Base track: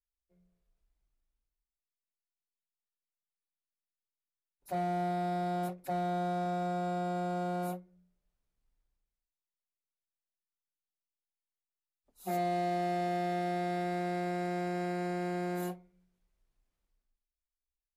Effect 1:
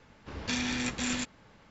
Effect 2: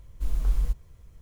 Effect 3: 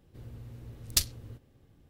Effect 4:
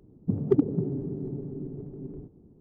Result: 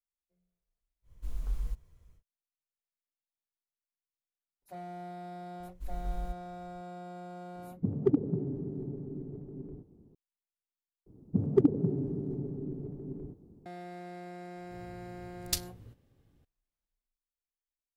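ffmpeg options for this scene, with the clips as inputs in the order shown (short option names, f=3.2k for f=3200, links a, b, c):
-filter_complex "[2:a]asplit=2[a][b];[4:a]asplit=2[c][d];[0:a]volume=-10.5dB[e];[d]bass=f=250:g=0,treble=f=4k:g=4[f];[e]asplit=2[g][h];[g]atrim=end=11.064[i];[f]atrim=end=2.6,asetpts=PTS-STARTPTS,volume=-1.5dB[j];[h]atrim=start=13.656[k];[a]atrim=end=1.21,asetpts=PTS-STARTPTS,volume=-9.5dB,afade=t=in:d=0.1,afade=t=out:st=1.11:d=0.1,adelay=1020[l];[b]atrim=end=1.21,asetpts=PTS-STARTPTS,volume=-12dB,afade=t=in:d=0.004:c=hsin,afade=t=out:st=1.206:d=0.004:c=hsin,adelay=5600[m];[c]atrim=end=2.6,asetpts=PTS-STARTPTS,volume=-4dB,afade=t=in:d=0.004:c=hsin,afade=t=out:st=2.596:d=0.004:c=hsin,adelay=7550[n];[3:a]atrim=end=1.89,asetpts=PTS-STARTPTS,volume=-6dB,afade=t=in:d=0.004:c=hsin,afade=t=out:st=1.886:d=0.004:c=hsin,adelay=14560[o];[i][j]acrossfade=d=0.004:c1=hsin:c2=hsin[p];[p][k]acrossfade=d=0.004:c1=hsin:c2=hsin[q];[q][l][m][n][o]amix=inputs=5:normalize=0"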